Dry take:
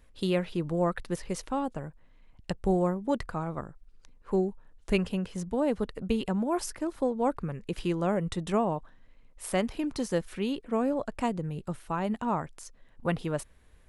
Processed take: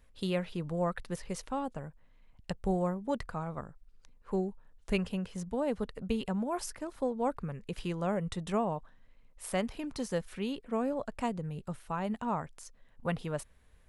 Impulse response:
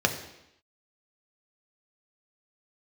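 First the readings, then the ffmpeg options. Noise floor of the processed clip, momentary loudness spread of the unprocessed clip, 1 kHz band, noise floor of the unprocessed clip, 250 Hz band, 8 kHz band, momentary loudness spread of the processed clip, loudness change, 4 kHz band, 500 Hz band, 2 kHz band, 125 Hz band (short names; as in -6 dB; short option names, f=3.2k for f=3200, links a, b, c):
-61 dBFS, 9 LU, -3.5 dB, -58 dBFS, -5.0 dB, -3.5 dB, 9 LU, -4.5 dB, -3.5 dB, -4.5 dB, -3.5 dB, -3.5 dB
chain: -af "equalizer=f=330:t=o:w=0.31:g=-7,volume=-3.5dB"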